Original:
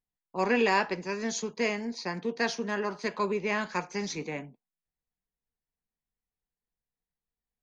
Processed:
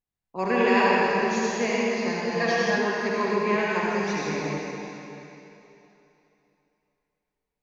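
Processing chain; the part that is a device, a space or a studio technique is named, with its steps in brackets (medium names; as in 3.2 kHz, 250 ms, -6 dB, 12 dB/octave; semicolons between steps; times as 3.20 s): swimming-pool hall (reverberation RT60 3.1 s, pre-delay 59 ms, DRR -6.5 dB; treble shelf 4 kHz -8 dB); 2.31–2.78 s: comb 6 ms, depth 73%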